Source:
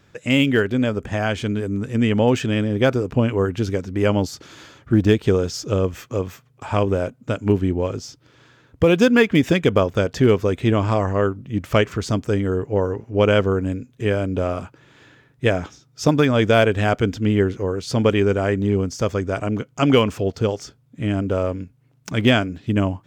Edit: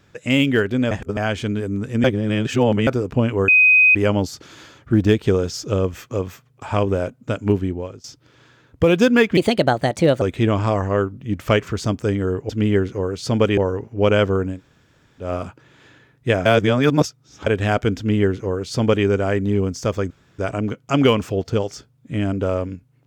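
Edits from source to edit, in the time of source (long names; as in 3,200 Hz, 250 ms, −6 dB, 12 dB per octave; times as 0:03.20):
0:00.91–0:01.17: reverse
0:02.04–0:02.87: reverse
0:03.48–0:03.95: beep over 2,510 Hz −9 dBFS
0:07.50–0:08.04: fade out, to −18 dB
0:09.37–0:10.46: play speed 129%
0:13.70–0:14.42: fill with room tone, crossfade 0.16 s
0:15.62–0:16.63: reverse
0:17.14–0:18.22: duplicate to 0:12.74
0:19.27: splice in room tone 0.28 s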